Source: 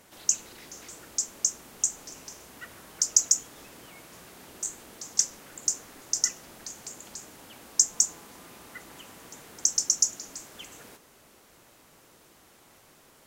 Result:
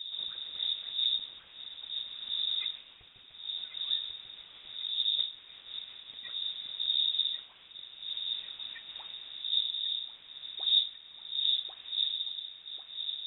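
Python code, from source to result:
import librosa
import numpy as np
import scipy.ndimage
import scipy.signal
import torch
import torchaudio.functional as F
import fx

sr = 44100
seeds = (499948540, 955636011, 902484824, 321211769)

y = fx.pitch_glide(x, sr, semitones=-3.5, runs='ending unshifted')
y = fx.dmg_wind(y, sr, seeds[0], corner_hz=180.0, level_db=-35.0)
y = fx.low_shelf(y, sr, hz=160.0, db=8.0)
y = fx.echo_wet_highpass(y, sr, ms=1093, feedback_pct=51, hz=1400.0, wet_db=-7.0)
y = fx.rider(y, sr, range_db=4, speed_s=0.5)
y = fx.freq_invert(y, sr, carrier_hz=3700)
y = y * librosa.db_to_amplitude(-8.0)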